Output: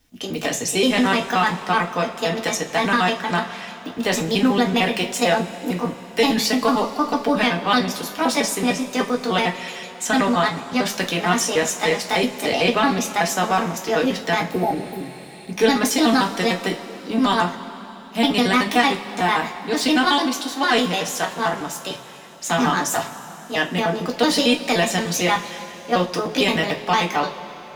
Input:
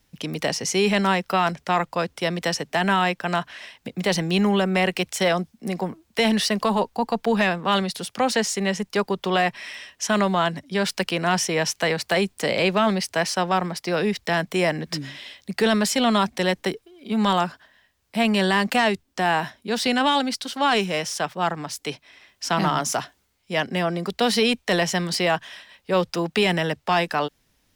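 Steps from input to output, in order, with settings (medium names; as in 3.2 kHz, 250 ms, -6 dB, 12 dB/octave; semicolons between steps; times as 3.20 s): pitch shift switched off and on +4 st, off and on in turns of 75 ms; spectral replace 14.54–15.43 s, 930–11000 Hz after; two-slope reverb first 0.24 s, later 3.9 s, from -21 dB, DRR 0.5 dB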